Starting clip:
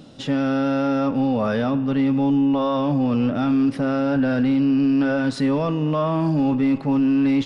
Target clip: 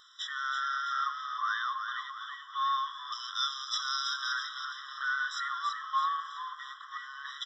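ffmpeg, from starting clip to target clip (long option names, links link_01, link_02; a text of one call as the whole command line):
ffmpeg -i in.wav -filter_complex "[0:a]asettb=1/sr,asplit=3[link_01][link_02][link_03];[link_01]atrim=end=3.124[link_04];[link_02]atrim=start=3.12:end=4.32,asetpts=PTS-STARTPTS,afade=type=in:duration=0.004:curve=qsin,afade=type=out:start_time=1.196:duration=0.004:curve=qsin,highshelf=frequency=3100:width_type=q:width=3:gain=12[link_05];[link_03]atrim=start=4.316[link_06];[link_04][link_05]acrossfade=duration=0.004:curve1=hsin:curve2=qsin[link_07];[link_07][link_06]acrossfade=duration=0.004:curve1=qsin:curve2=hsin,aresample=16000,aresample=44100,asplit=7[link_08][link_09][link_10][link_11][link_12][link_13][link_14];[link_09]adelay=329,afreqshift=-99,volume=-6dB[link_15];[link_10]adelay=658,afreqshift=-198,volume=-12dB[link_16];[link_11]adelay=987,afreqshift=-297,volume=-18dB[link_17];[link_12]adelay=1316,afreqshift=-396,volume=-24.1dB[link_18];[link_13]adelay=1645,afreqshift=-495,volume=-30.1dB[link_19];[link_14]adelay=1974,afreqshift=-594,volume=-36.1dB[link_20];[link_08][link_15][link_16][link_17][link_18][link_19][link_20]amix=inputs=7:normalize=0,afftfilt=real='re*eq(mod(floor(b*sr/1024/1000),2),1)':imag='im*eq(mod(floor(b*sr/1024/1000),2),1)':win_size=1024:overlap=0.75" out.wav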